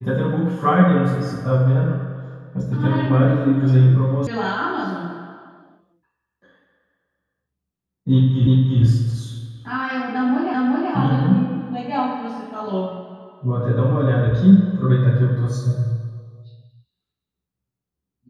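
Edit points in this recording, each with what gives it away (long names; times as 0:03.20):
0:04.27: cut off before it has died away
0:08.47: the same again, the last 0.35 s
0:10.54: the same again, the last 0.38 s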